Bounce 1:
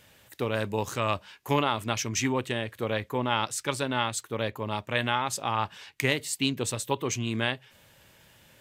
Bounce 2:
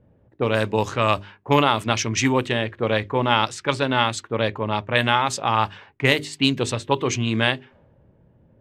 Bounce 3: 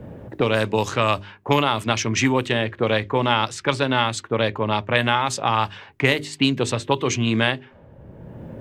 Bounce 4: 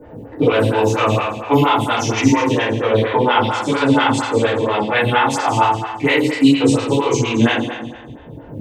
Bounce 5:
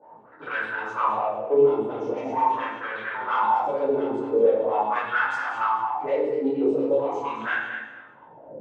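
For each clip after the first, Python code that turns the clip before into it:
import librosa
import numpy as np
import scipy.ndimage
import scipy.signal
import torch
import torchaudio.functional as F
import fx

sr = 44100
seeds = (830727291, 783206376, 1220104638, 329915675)

y1 = fx.hum_notches(x, sr, base_hz=50, count=8)
y1 = fx.env_lowpass(y1, sr, base_hz=360.0, full_db=-23.0)
y1 = F.gain(torch.from_numpy(y1), 8.0).numpy()
y2 = fx.band_squash(y1, sr, depth_pct=70)
y3 = fx.echo_feedback(y2, sr, ms=196, feedback_pct=39, wet_db=-13)
y3 = fx.rev_fdn(y3, sr, rt60_s=1.1, lf_ratio=1.2, hf_ratio=0.85, size_ms=20.0, drr_db=-9.0)
y3 = fx.stagger_phaser(y3, sr, hz=4.3)
y3 = F.gain(torch.from_numpy(y3), -2.5).numpy()
y4 = 10.0 ** (-9.5 / 20.0) * np.tanh(y3 / 10.0 ** (-9.5 / 20.0))
y4 = fx.wah_lfo(y4, sr, hz=0.42, low_hz=390.0, high_hz=1600.0, q=6.9)
y4 = fx.room_shoebox(y4, sr, seeds[0], volume_m3=250.0, walls='mixed', distance_m=1.1)
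y4 = F.gain(torch.from_numpy(y4), 2.5).numpy()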